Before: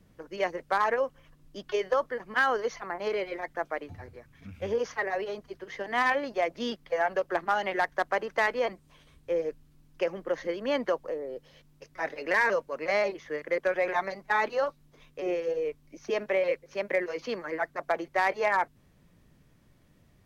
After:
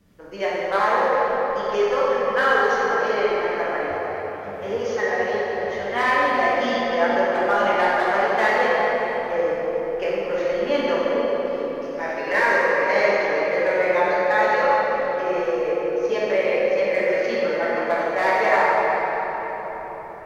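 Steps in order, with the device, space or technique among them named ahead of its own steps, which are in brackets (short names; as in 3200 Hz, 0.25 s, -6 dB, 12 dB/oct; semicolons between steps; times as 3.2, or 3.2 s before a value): cathedral (reverb RT60 5.0 s, pre-delay 5 ms, DRR -9 dB); 3.98–5.57 HPF 170 Hz 6 dB/oct; low shelf 230 Hz -3.5 dB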